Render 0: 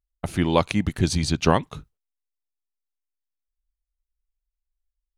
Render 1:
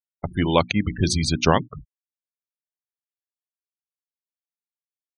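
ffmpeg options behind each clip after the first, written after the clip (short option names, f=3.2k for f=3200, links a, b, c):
-af "bandreject=f=60:t=h:w=6,bandreject=f=120:t=h:w=6,bandreject=f=180:t=h:w=6,bandreject=f=240:t=h:w=6,bandreject=f=300:t=h:w=6,bandreject=f=360:t=h:w=6,afftfilt=real='re*gte(hypot(re,im),0.0355)':imag='im*gte(hypot(re,im),0.0355)':win_size=1024:overlap=0.75,adynamicequalizer=threshold=0.02:dfrequency=1800:dqfactor=0.7:tfrequency=1800:tqfactor=0.7:attack=5:release=100:ratio=0.375:range=2:mode=boostabove:tftype=highshelf,volume=1dB"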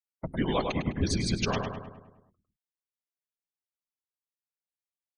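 -filter_complex "[0:a]alimiter=limit=-7.5dB:level=0:latency=1:release=352,afftfilt=real='hypot(re,im)*cos(2*PI*random(0))':imag='hypot(re,im)*sin(2*PI*random(1))':win_size=512:overlap=0.75,asplit=2[a][b];[b]adelay=103,lowpass=f=2.5k:p=1,volume=-4dB,asplit=2[c][d];[d]adelay=103,lowpass=f=2.5k:p=1,volume=0.55,asplit=2[e][f];[f]adelay=103,lowpass=f=2.5k:p=1,volume=0.55,asplit=2[g][h];[h]adelay=103,lowpass=f=2.5k:p=1,volume=0.55,asplit=2[i][j];[j]adelay=103,lowpass=f=2.5k:p=1,volume=0.55,asplit=2[k][l];[l]adelay=103,lowpass=f=2.5k:p=1,volume=0.55,asplit=2[m][n];[n]adelay=103,lowpass=f=2.5k:p=1,volume=0.55[o];[c][e][g][i][k][m][o]amix=inputs=7:normalize=0[p];[a][p]amix=inputs=2:normalize=0,volume=-1.5dB"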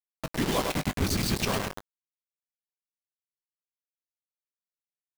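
-filter_complex "[0:a]acrusher=bits=4:mix=0:aa=0.000001,asplit=2[a][b];[b]adelay=20,volume=-13.5dB[c];[a][c]amix=inputs=2:normalize=0"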